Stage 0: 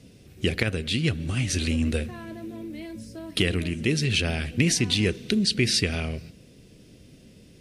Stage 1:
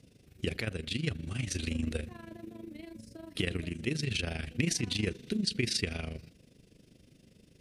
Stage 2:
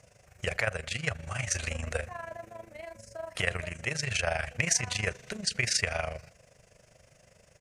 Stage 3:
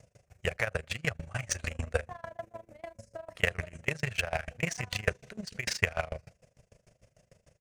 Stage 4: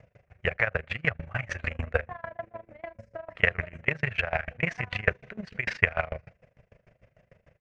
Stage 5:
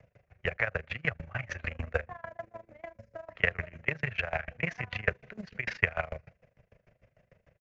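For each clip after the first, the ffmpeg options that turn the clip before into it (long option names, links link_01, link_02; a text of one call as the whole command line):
ffmpeg -i in.wav -af "tremolo=f=25:d=0.75,volume=-5.5dB" out.wav
ffmpeg -i in.wav -af "firequalizer=gain_entry='entry(120,0);entry(280,-17);entry(590,14);entry(1800,11);entry(3600,-4);entry(6600,11);entry(11000,0)':delay=0.05:min_phase=1" out.wav
ffmpeg -i in.wav -filter_complex "[0:a]asplit=2[link_01][link_02];[link_02]adynamicsmooth=sensitivity=6.5:basefreq=700,volume=1dB[link_03];[link_01][link_03]amix=inputs=2:normalize=0,aeval=exprs='val(0)*pow(10,-25*if(lt(mod(6.7*n/s,1),2*abs(6.7)/1000),1-mod(6.7*n/s,1)/(2*abs(6.7)/1000),(mod(6.7*n/s,1)-2*abs(6.7)/1000)/(1-2*abs(6.7)/1000))/20)':channel_layout=same" out.wav
ffmpeg -i in.wav -af "lowpass=frequency=2100:width_type=q:width=1.6,volume=2.5dB" out.wav
ffmpeg -i in.wav -filter_complex "[0:a]acrossover=split=190|650[link_01][link_02][link_03];[link_02]acrusher=bits=6:mode=log:mix=0:aa=0.000001[link_04];[link_01][link_04][link_03]amix=inputs=3:normalize=0,aresample=16000,aresample=44100,volume=-4dB" out.wav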